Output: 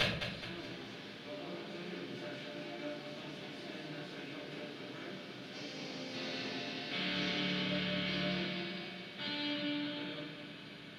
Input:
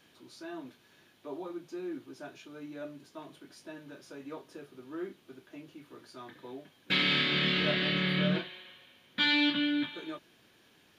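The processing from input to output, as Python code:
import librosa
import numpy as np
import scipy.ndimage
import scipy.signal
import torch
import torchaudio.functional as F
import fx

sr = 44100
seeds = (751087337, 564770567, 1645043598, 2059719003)

p1 = fx.bin_compress(x, sr, power=0.4)
p2 = fx.echo_pitch(p1, sr, ms=322, semitones=3, count=2, db_per_echo=-6.0)
p3 = fx.gate_flip(p2, sr, shuts_db=-29.0, range_db=-32)
p4 = p3 + fx.echo_feedback(p3, sr, ms=211, feedback_pct=47, wet_db=-8.0, dry=0)
p5 = fx.room_shoebox(p4, sr, seeds[0], volume_m3=120.0, walls='mixed', distance_m=3.5)
y = F.gain(torch.from_numpy(p5), 5.5).numpy()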